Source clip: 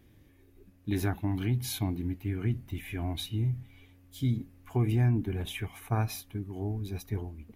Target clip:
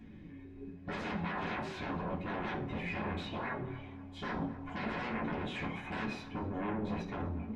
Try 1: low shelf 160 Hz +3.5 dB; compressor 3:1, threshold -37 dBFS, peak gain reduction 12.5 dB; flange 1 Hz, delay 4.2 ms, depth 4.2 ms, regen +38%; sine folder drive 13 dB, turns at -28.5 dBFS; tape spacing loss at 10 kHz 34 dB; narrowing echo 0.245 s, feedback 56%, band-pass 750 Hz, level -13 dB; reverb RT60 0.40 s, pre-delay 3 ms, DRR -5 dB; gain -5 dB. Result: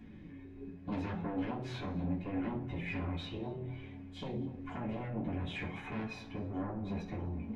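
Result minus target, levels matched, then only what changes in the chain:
compressor: peak gain reduction +12.5 dB
remove: compressor 3:1, threshold -37 dBFS, peak gain reduction 12.5 dB

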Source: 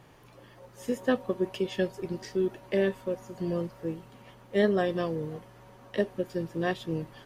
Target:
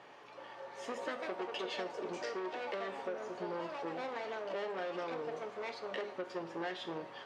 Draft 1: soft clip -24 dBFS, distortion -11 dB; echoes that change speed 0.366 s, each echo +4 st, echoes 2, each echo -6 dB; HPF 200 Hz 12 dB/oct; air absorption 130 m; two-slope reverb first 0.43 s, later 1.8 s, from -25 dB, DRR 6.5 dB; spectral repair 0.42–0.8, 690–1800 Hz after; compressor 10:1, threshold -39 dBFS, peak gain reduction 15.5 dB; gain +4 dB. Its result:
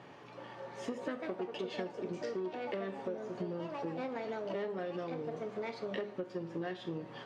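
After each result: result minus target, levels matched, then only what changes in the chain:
250 Hz band +4.5 dB; soft clip: distortion -6 dB
change: HPF 470 Hz 12 dB/oct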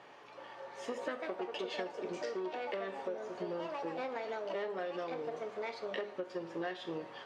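soft clip: distortion -6 dB
change: soft clip -32 dBFS, distortion -5 dB

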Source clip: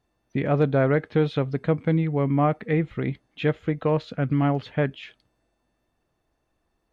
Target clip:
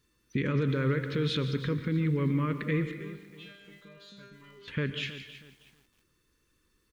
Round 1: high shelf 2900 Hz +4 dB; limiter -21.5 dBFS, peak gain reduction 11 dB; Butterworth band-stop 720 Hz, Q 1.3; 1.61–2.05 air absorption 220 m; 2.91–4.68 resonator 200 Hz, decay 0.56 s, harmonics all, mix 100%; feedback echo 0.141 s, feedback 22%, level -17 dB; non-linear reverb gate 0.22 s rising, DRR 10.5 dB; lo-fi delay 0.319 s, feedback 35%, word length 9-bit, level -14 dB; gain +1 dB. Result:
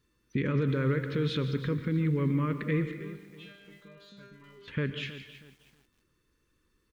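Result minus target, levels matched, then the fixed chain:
8000 Hz band -4.0 dB
high shelf 2900 Hz +10 dB; limiter -21.5 dBFS, peak gain reduction 11.5 dB; Butterworth band-stop 720 Hz, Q 1.3; 1.61–2.05 air absorption 220 m; 2.91–4.68 resonator 200 Hz, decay 0.56 s, harmonics all, mix 100%; feedback echo 0.141 s, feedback 22%, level -17 dB; non-linear reverb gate 0.22 s rising, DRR 10.5 dB; lo-fi delay 0.319 s, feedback 35%, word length 9-bit, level -14 dB; gain +1 dB

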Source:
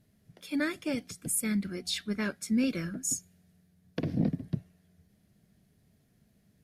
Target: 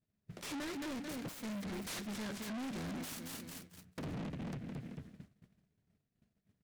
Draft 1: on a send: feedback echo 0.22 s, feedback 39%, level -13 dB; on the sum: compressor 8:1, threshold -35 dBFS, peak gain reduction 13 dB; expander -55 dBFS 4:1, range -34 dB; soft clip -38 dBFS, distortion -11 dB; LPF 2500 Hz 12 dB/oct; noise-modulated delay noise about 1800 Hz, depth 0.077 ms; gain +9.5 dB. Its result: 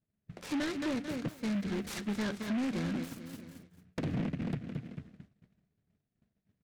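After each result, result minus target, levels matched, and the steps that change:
8000 Hz band -8.5 dB; soft clip: distortion -7 dB
change: LPF 6600 Hz 12 dB/oct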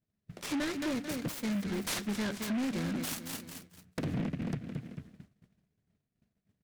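soft clip: distortion -7 dB
change: soft clip -49 dBFS, distortion -4 dB

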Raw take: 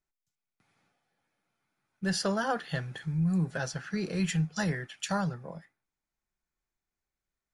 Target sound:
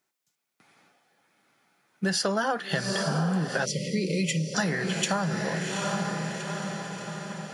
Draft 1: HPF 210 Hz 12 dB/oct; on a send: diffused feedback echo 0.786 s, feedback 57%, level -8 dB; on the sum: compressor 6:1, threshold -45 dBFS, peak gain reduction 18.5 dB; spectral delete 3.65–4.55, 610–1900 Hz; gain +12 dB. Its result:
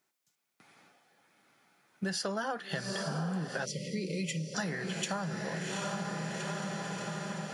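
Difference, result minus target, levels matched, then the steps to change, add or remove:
compressor: peak gain reduction +8 dB
change: compressor 6:1, threshold -35.5 dBFS, peak gain reduction 10.5 dB

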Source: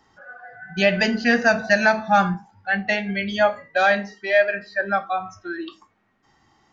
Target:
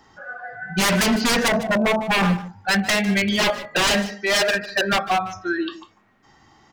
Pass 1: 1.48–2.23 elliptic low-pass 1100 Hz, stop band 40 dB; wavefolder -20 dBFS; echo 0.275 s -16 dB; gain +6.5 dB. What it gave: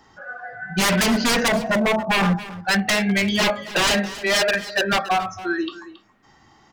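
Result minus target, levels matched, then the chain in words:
echo 0.124 s late
1.48–2.23 elliptic low-pass 1100 Hz, stop band 40 dB; wavefolder -20 dBFS; echo 0.151 s -16 dB; gain +6.5 dB

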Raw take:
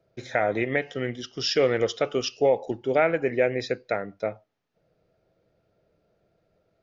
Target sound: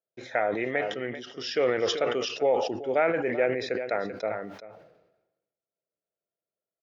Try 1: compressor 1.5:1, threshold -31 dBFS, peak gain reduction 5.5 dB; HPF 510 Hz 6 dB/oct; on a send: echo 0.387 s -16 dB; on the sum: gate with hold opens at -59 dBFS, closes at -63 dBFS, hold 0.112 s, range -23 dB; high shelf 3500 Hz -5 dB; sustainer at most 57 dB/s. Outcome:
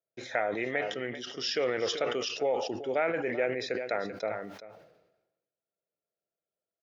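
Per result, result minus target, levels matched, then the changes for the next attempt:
compressor: peak gain reduction +5.5 dB; 8000 Hz band +4.0 dB
remove: compressor 1.5:1, threshold -31 dBFS, peak gain reduction 5.5 dB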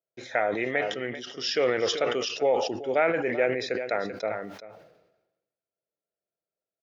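8000 Hz band +3.0 dB
change: high shelf 3500 Hz -13.5 dB

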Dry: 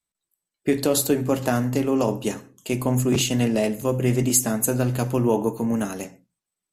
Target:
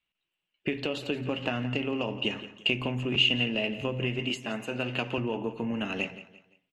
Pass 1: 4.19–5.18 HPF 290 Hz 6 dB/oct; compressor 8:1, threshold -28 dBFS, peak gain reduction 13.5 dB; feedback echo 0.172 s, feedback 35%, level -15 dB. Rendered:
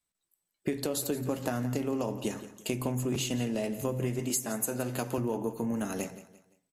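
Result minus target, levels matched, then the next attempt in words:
2000 Hz band -9.0 dB
4.19–5.18 HPF 290 Hz 6 dB/oct; compressor 8:1, threshold -28 dBFS, peak gain reduction 13.5 dB; synth low-pass 2800 Hz, resonance Q 8.1; feedback echo 0.172 s, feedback 35%, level -15 dB

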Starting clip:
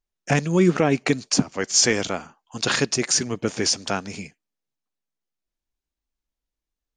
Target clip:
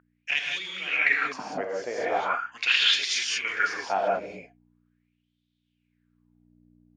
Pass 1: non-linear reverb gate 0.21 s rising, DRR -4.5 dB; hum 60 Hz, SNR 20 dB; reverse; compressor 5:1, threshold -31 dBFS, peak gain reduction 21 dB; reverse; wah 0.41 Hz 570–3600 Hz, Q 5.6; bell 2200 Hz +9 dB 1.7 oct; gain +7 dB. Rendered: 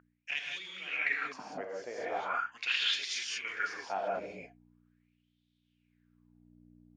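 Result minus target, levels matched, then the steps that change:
compressor: peak gain reduction +9 dB
change: compressor 5:1, threshold -19.5 dBFS, peak gain reduction 11.5 dB

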